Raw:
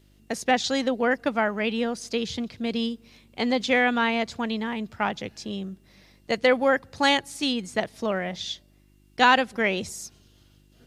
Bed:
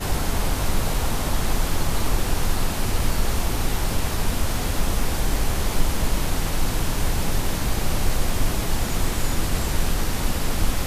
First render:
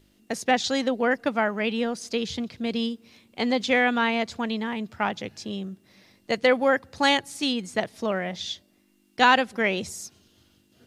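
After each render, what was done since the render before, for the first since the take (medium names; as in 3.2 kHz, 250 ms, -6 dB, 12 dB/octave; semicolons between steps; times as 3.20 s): de-hum 50 Hz, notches 3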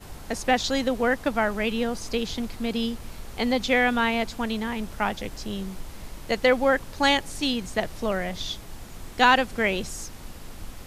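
add bed -17.5 dB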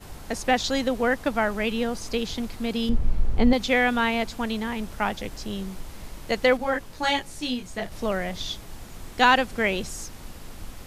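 2.89–3.53 s: tilt EQ -3.5 dB/octave; 6.57–7.92 s: detune thickener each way 14 cents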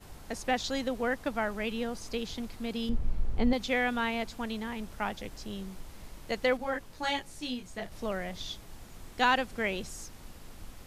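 trim -7.5 dB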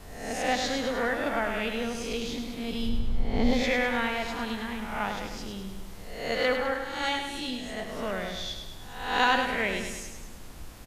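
reverse spectral sustain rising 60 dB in 0.75 s; feedback delay 103 ms, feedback 54%, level -6.5 dB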